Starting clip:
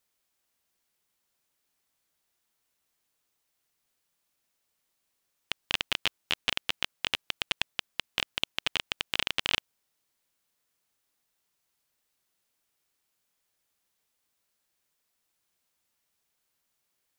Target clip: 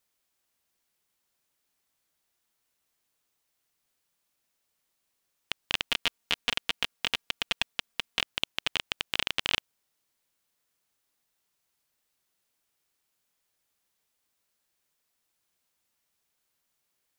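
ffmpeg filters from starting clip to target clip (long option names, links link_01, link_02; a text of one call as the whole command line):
ffmpeg -i in.wav -filter_complex "[0:a]asettb=1/sr,asplit=3[link_01][link_02][link_03];[link_01]atrim=end=5.874[link_04];[link_02]atrim=start=5.87:end=8.22,asetpts=PTS-STARTPTS,afade=type=in:duration=0.004:curve=qsin,afade=type=out:start_time=2.346:duration=0.004:curve=qsin,aecho=1:1:4.3:0.47,atrim=end_sample=103635[link_05];[link_03]atrim=start=8.216[link_06];[link_04][link_05]acrossfade=duration=0.004:curve1=hsin:curve2=qsin[link_07];[link_07][link_06]acrossfade=duration=0.004:curve1=qsin:curve2=hsin" out.wav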